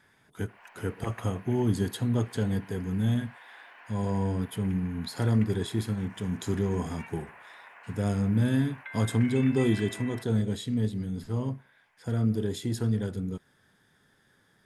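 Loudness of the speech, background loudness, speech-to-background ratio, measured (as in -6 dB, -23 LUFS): -29.5 LUFS, -47.5 LUFS, 18.0 dB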